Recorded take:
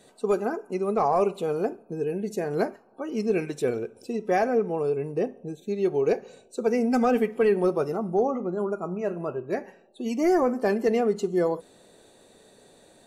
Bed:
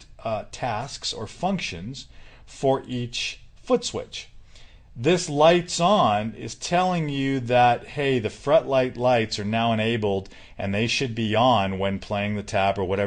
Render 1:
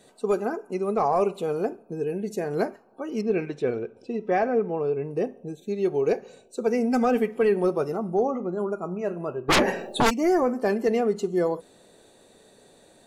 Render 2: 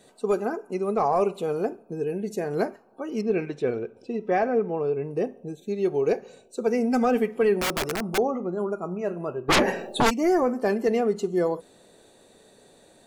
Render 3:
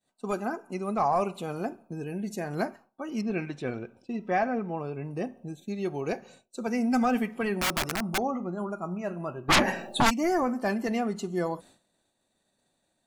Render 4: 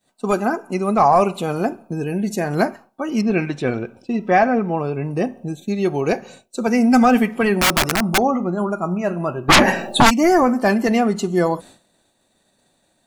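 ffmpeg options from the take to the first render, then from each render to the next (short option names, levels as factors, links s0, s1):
-filter_complex "[0:a]asettb=1/sr,asplit=3[s0][s1][s2];[s0]atrim=end=3.214[s3];[s1]atrim=start=3.21:end=5.11,asetpts=PTS-STARTPTS,afade=t=in:d=0.004:c=qsin,afade=t=out:st=1.896:d=0.004:c=qsin,lowpass=3500[s4];[s2]atrim=start=5.106[s5];[s3][s4]acrossfade=d=0.004:c1=hsin:c2=qsin[s6];[s6][s5]acrossfade=d=0.004:c1=qsin:c2=hsin,asplit=3[s7][s8][s9];[s7]afade=t=out:st=9.48:d=0.02[s10];[s8]aeval=exprs='0.178*sin(PI/2*8.91*val(0)/0.178)':c=same,afade=t=in:st=9.48:d=0.02,afade=t=out:st=10.09:d=0.02[s11];[s9]afade=t=in:st=10.09:d=0.02[s12];[s10][s11][s12]amix=inputs=3:normalize=0"
-filter_complex "[0:a]asettb=1/sr,asplit=3[s0][s1][s2];[s0]atrim=end=7.604[s3];[s1]atrim=start=7.6:end=8.18,asetpts=PTS-STARTPTS,afade=t=in:d=0.004:c=qsin,afade=t=out:st=0.576:d=0.004:c=qsin,aeval=exprs='(mod(11.2*val(0)+1,2)-1)/11.2':c=same[s4];[s2]atrim=start=8.176[s5];[s3][s4]acrossfade=d=0.004:c1=hsin:c2=qsin[s6];[s6][s5]acrossfade=d=0.004:c1=qsin:c2=hsin"
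-af "agate=range=0.0224:threshold=0.00708:ratio=3:detection=peak,equalizer=f=440:t=o:w=0.53:g=-13"
-af "volume=3.76,alimiter=limit=0.708:level=0:latency=1"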